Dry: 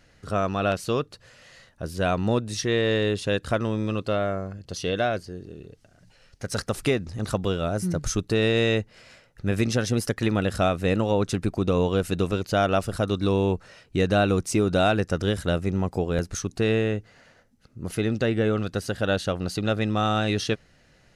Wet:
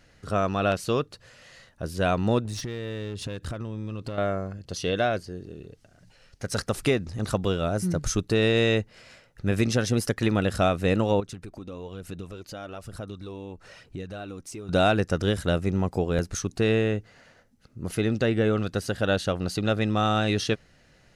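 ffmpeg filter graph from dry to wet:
-filter_complex "[0:a]asettb=1/sr,asplit=3[a][b][c];[a]atrim=end=2.454[d];[b]atrim=start=2.45:end=4.18,asetpts=PTS-STARTPTS,afade=t=in:d=0.004:c=qsin,afade=t=out:st=1.726:d=0.004:c=qsin,equalizer=f=88:t=o:w=2.5:g=7,acompressor=threshold=-28dB:ratio=12:attack=3.2:release=140:knee=1:detection=peak,aeval=exprs='clip(val(0),-1,0.0251)':c=same[e];[c]atrim=start=4.176[f];[d][e]acrossfade=d=0.004:c1=hsin:c2=qsin[g];[g][f]acrossfade=d=0.004:c1=qsin:c2=hsin,asettb=1/sr,asplit=3[h][i][j];[h]atrim=end=11.204[k];[i]atrim=start=11.2:end=14.69,asetpts=PTS-STARTPTS,afade=t=in:d=0.004:c=qsin,afade=t=out:st=3.486:d=0.004:c=qsin,acompressor=threshold=-43dB:ratio=2.5:attack=3.2:release=140:knee=1:detection=peak,aphaser=in_gain=1:out_gain=1:delay=3.8:decay=0.35:speed=1.1:type=sinusoidal[l];[j]atrim=start=14.686[m];[k][l]acrossfade=d=0.004:c1=hsin:c2=qsin[n];[n][m]acrossfade=d=0.004:c1=qsin:c2=hsin"

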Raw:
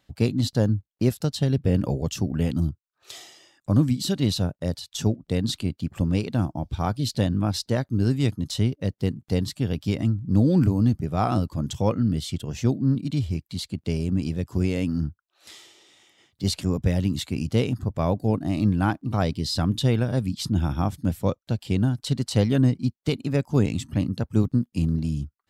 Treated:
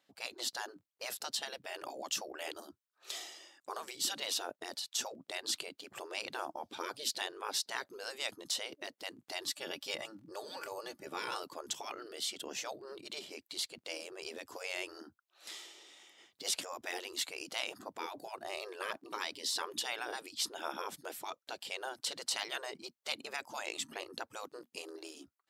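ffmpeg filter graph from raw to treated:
-filter_complex "[0:a]asettb=1/sr,asplit=3[a][b][c];[a]atrim=end=9.454[d];[b]atrim=start=9.45:end=11.4,asetpts=PTS-STARTPTS,afade=t=in:d=0.004:c=qsin,afade=t=out:st=1.946:d=0.004:c=qsin,lowshelf=f=240:g=-10,aecho=1:1:3.5:0.52,atrim=end_sample=85995[e];[c]atrim=start=11.396[f];[d][e]acrossfade=d=0.004:c1=hsin:c2=qsin[g];[g][f]acrossfade=d=0.004:c1=qsin:c2=hsin,afftfilt=real='re*lt(hypot(re,im),0.1)':imag='im*lt(hypot(re,im),0.1)':win_size=1024:overlap=0.75,highpass=340,dynaudnorm=f=210:g=3:m=5.5dB,volume=-6.5dB"

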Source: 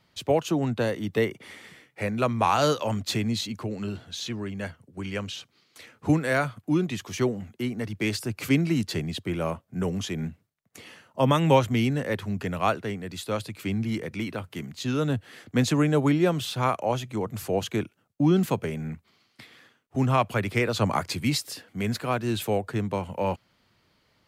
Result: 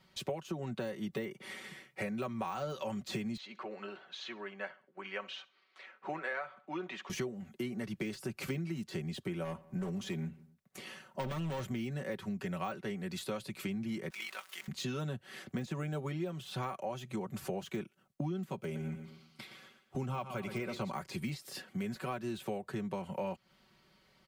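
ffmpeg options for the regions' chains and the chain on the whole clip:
-filter_complex "[0:a]asettb=1/sr,asplit=3[a][b][c];[a]atrim=end=3.374[d];[b]atrim=start=3.37:end=7.1,asetpts=PTS-STARTPTS,afade=t=in:d=0.004:c=qsin,afade=t=out:st=3.726:d=0.004:c=qsin,deesser=0.65,highpass=650,lowpass=2.3k,aecho=1:1:66|132|198:0.0891|0.0321|0.0116,atrim=end_sample=164493[e];[c]atrim=start=7.096[f];[d][e]acrossfade=d=0.004:c1=hsin:c2=qsin[g];[g][f]acrossfade=d=0.004:c1=qsin:c2=hsin,asettb=1/sr,asplit=3[h][i][j];[h]atrim=end=9.444[k];[i]atrim=start=9.44:end=11.64,asetpts=PTS-STARTPTS,afade=t=in:d=0.004:c=qsin,afade=t=out:st=2.196:d=0.004:c=qsin,asoftclip=type=hard:threshold=-25dB,asplit=2[l][m];[m]adelay=89,lowpass=f=2.2k:p=1,volume=-23dB,asplit=2[n][o];[o]adelay=89,lowpass=f=2.2k:p=1,volume=0.5,asplit=2[p][q];[q]adelay=89,lowpass=f=2.2k:p=1,volume=0.5[r];[l][n][p][r]amix=inputs=4:normalize=0,atrim=end_sample=97020[s];[j]atrim=start=11.636[t];[k][s]acrossfade=d=0.004:c1=hsin:c2=qsin[u];[u][t]acrossfade=d=0.004:c1=qsin:c2=hsin,asettb=1/sr,asplit=3[v][w][x];[v]atrim=end=14.104[y];[w]atrim=start=14.1:end=14.68,asetpts=PTS-STARTPTS,afade=t=in:d=0.004:c=qsin,afade=t=out:st=0.576:d=0.004:c=qsin,aeval=exprs='val(0)+0.5*0.0106*sgn(val(0))':c=same,highpass=1.3k,tremolo=f=48:d=0.621[z];[x]atrim=start=14.676[aa];[y][z]acrossfade=d=0.004:c1=hsin:c2=qsin[ab];[ab][aa]acrossfade=d=0.004:c1=qsin:c2=hsin,asettb=1/sr,asplit=3[ac][ad][ae];[ac]atrim=end=18.574[af];[ad]atrim=start=18.57:end=20.92,asetpts=PTS-STARTPTS,afade=t=in:d=0.004:c=qsin,afade=t=out:st=2.346:d=0.004:c=qsin,asuperstop=centerf=1800:order=4:qfactor=7.8,aecho=1:1:118|236|354|472:0.251|0.098|0.0382|0.0149,atrim=end_sample=103635[ag];[ae]atrim=start=20.916[ah];[af][ag]acrossfade=d=0.004:c1=hsin:c2=qsin[ai];[ai][ah]acrossfade=d=0.004:c1=qsin:c2=hsin,deesser=0.9,aecho=1:1:5.3:0.73,acompressor=threshold=-32dB:ratio=10,volume=-2.5dB"

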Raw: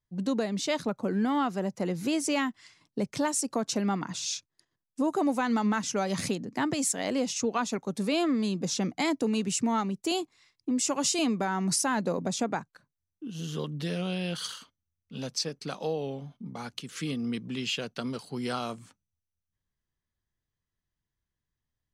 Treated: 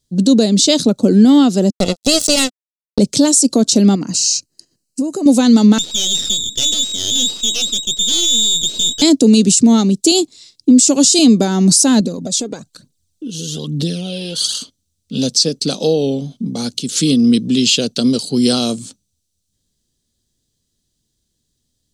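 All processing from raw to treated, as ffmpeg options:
-filter_complex "[0:a]asettb=1/sr,asplit=3[a][b][c];[a]atrim=end=1.704[d];[b]atrim=start=1.7:end=2.99,asetpts=PTS-STARTPTS,afade=t=in:d=0.004:c=qsin,afade=t=out:st=1.286:d=0.004:c=qsin,aeval=exprs='val(0)+0.5*0.0106*sgn(val(0))':c=same,acrusher=bits=3:mix=0:aa=0.5,aecho=1:1:1.5:0.54,atrim=end_sample=56889[e];[c]atrim=start=2.986[f];[d][e]acrossfade=d=0.004:c1=hsin:c2=qsin[g];[g][f]acrossfade=d=0.004:c1=qsin:c2=hsin,asettb=1/sr,asplit=3[h][i][j];[h]atrim=end=3.954[k];[i]atrim=start=3.95:end=5.26,asetpts=PTS-STARTPTS,afade=t=in:d=0.004:c=qsin,afade=t=out:st=1.306:d=0.004:c=qsin,acompressor=threshold=-35dB:ratio=5:attack=3.2:release=140:knee=1:detection=peak,asuperstop=centerf=3500:order=4:qfactor=3.7[l];[j]atrim=start=5.256[m];[k][l]acrossfade=d=0.004:c1=hsin:c2=qsin[n];[n][m]acrossfade=d=0.004:c1=qsin:c2=hsin,asettb=1/sr,asplit=3[o][p][q];[o]atrim=end=5.784[r];[p]atrim=start=5.78:end=9.02,asetpts=PTS-STARTPTS,afade=t=in:d=0.004:c=qsin,afade=t=out:st=3.236:d=0.004:c=qsin,aeval=exprs='(tanh(28.2*val(0)+0.5)-tanh(0.5))/28.2':c=same,lowpass=f=3.2k:t=q:w=0.5098,lowpass=f=3.2k:t=q:w=0.6013,lowpass=f=3.2k:t=q:w=0.9,lowpass=f=3.2k:t=q:w=2.563,afreqshift=-3800,aeval=exprs='max(val(0),0)':c=same[s];[q]atrim=start=9.016[t];[r][s]acrossfade=d=0.004:c1=hsin:c2=qsin[u];[u][t]acrossfade=d=0.004:c1=qsin:c2=hsin,asettb=1/sr,asplit=3[v][w][x];[v]atrim=end=12.004[y];[w]atrim=start=12:end=14.55,asetpts=PTS-STARTPTS,afade=t=in:d=0.004:c=qsin,afade=t=out:st=2.546:d=0.004:c=qsin,acompressor=threshold=-41dB:ratio=2.5:attack=3.2:release=140:knee=1:detection=peak,aphaser=in_gain=1:out_gain=1:delay=2.5:decay=0.54:speed=1.1:type=triangular[z];[x]atrim=start=14.546[aa];[y][z]acrossfade=d=0.004:c1=hsin:c2=qsin[ab];[ab][aa]acrossfade=d=0.004:c1=qsin:c2=hsin,equalizer=f=250:t=o:w=1:g=8,equalizer=f=500:t=o:w=1:g=4,equalizer=f=1k:t=o:w=1:g=-10,equalizer=f=2k:t=o:w=1:g=-10,equalizer=f=4k:t=o:w=1:g=11,equalizer=f=8k:t=o:w=1:g=12,alimiter=level_in=14dB:limit=-1dB:release=50:level=0:latency=1,volume=-1dB"

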